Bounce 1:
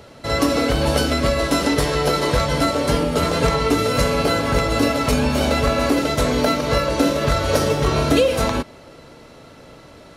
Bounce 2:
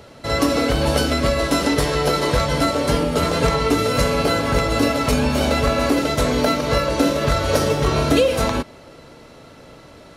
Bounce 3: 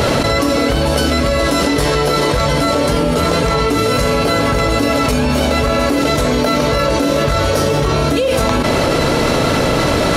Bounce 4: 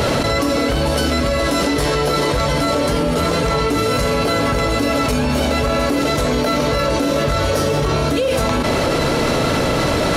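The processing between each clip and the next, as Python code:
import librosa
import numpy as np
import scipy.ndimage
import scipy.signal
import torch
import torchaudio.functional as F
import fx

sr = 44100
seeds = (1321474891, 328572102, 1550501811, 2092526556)

y1 = x
y2 = fx.env_flatten(y1, sr, amount_pct=100)
y2 = F.gain(torch.from_numpy(y2), -1.0).numpy()
y3 = 10.0 ** (-5.5 / 20.0) * np.tanh(y2 / 10.0 ** (-5.5 / 20.0))
y3 = y3 + 10.0 ** (-17.5 / 20.0) * np.pad(y3, (int(674 * sr / 1000.0), 0))[:len(y3)]
y3 = F.gain(torch.from_numpy(y3), -2.0).numpy()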